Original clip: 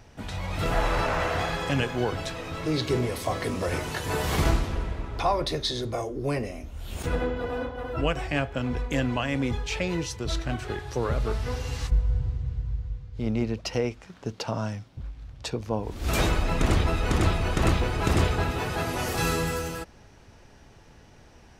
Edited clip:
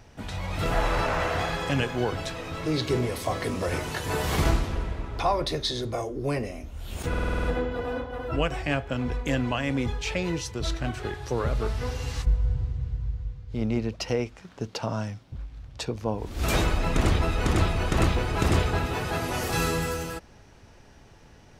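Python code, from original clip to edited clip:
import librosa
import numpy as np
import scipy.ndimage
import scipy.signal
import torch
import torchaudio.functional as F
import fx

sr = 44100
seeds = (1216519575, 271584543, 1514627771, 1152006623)

y = fx.edit(x, sr, fx.stutter(start_s=7.09, slice_s=0.05, count=8), tone=tone)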